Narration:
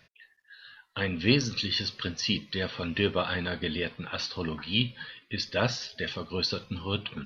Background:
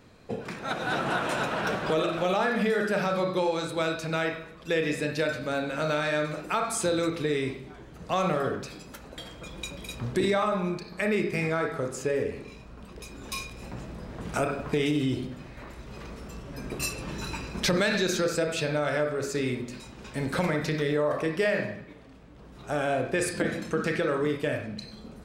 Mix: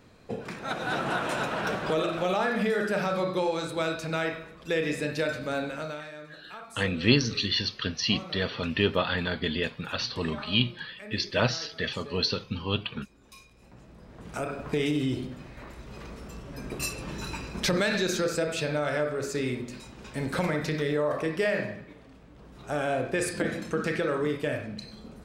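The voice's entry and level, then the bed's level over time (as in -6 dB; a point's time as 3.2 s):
5.80 s, +2.0 dB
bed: 5.65 s -1 dB
6.14 s -16.5 dB
13.47 s -16.5 dB
14.79 s -1 dB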